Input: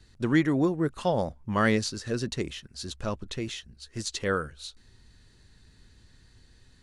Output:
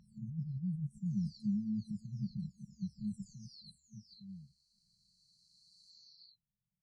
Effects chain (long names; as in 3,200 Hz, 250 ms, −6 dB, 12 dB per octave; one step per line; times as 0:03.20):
every frequency bin delayed by itself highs early, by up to 924 ms
band-pass filter sweep 270 Hz → 4,500 Hz, 0:02.82–0:06.24
brickwall limiter −37.5 dBFS, peak gain reduction 19.5 dB
brick-wall band-stop 220–4,000 Hz
level +13 dB